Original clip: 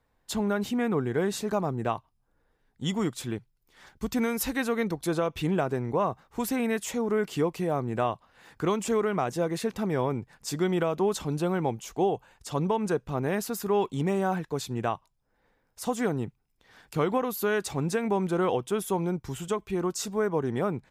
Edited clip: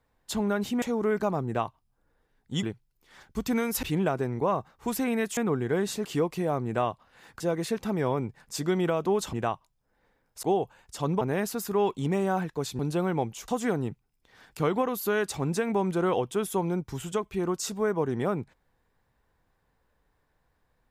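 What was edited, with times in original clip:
0.82–1.5 swap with 6.89–7.27
2.93–3.29 cut
4.49–5.35 cut
8.62–9.33 cut
11.26–11.95 swap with 14.74–15.84
12.73–13.16 cut

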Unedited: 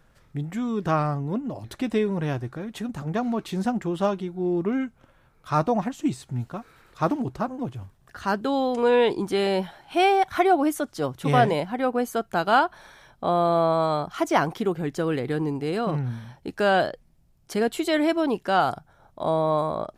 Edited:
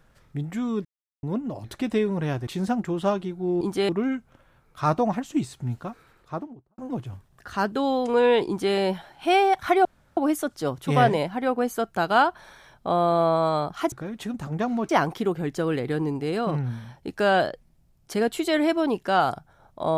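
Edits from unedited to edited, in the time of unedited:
0.85–1.23 mute
2.47–3.44 move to 14.29
6.52–7.47 studio fade out
9.16–9.44 copy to 4.58
10.54 insert room tone 0.32 s

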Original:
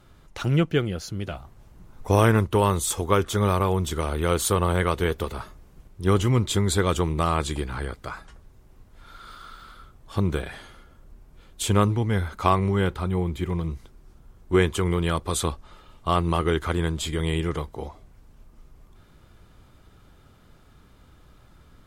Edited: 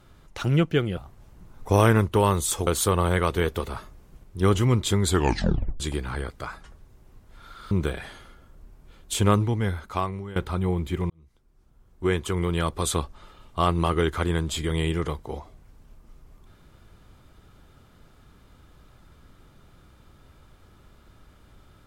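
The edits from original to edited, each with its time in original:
0.97–1.36 cut
3.06–4.31 cut
6.73 tape stop 0.71 s
9.35–10.2 cut
11.93–12.85 fade out, to -18.5 dB
13.59–15.25 fade in

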